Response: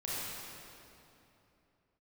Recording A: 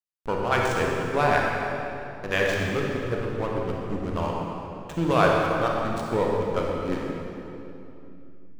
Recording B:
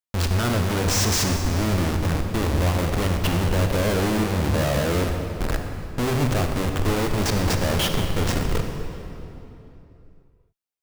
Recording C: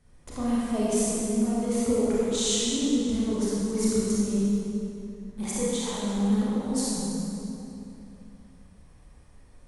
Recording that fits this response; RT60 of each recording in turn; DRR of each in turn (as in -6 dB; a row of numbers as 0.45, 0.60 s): C; 3.0, 3.0, 3.0 s; -2.0, 4.0, -8.5 dB